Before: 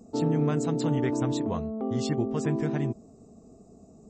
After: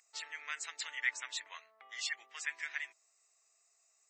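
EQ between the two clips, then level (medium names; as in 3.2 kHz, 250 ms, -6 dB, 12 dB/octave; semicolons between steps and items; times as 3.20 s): ladder high-pass 1.8 kHz, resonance 65%; +10.0 dB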